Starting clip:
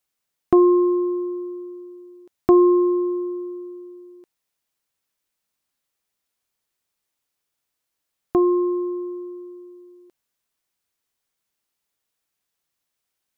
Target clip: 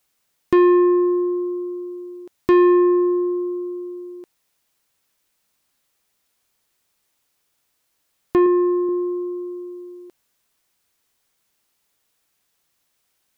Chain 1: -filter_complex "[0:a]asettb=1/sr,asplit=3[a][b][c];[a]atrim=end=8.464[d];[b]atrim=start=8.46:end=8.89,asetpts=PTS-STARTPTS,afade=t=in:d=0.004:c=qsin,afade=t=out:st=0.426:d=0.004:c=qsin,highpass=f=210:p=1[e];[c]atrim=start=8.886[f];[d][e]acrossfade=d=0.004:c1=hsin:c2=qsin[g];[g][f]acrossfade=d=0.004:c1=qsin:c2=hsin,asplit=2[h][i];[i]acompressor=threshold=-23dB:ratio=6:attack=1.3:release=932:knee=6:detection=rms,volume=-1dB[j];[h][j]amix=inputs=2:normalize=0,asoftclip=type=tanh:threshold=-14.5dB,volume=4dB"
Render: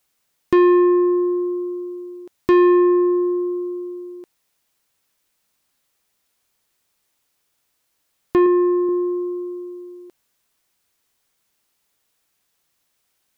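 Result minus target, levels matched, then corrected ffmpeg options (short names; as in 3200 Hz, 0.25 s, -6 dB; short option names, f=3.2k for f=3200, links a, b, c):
compressor: peak gain reduction -7 dB
-filter_complex "[0:a]asettb=1/sr,asplit=3[a][b][c];[a]atrim=end=8.464[d];[b]atrim=start=8.46:end=8.89,asetpts=PTS-STARTPTS,afade=t=in:d=0.004:c=qsin,afade=t=out:st=0.426:d=0.004:c=qsin,highpass=f=210:p=1[e];[c]atrim=start=8.886[f];[d][e]acrossfade=d=0.004:c1=hsin:c2=qsin[g];[g][f]acrossfade=d=0.004:c1=qsin:c2=hsin,asplit=2[h][i];[i]acompressor=threshold=-31.5dB:ratio=6:attack=1.3:release=932:knee=6:detection=rms,volume=-1dB[j];[h][j]amix=inputs=2:normalize=0,asoftclip=type=tanh:threshold=-14.5dB,volume=4dB"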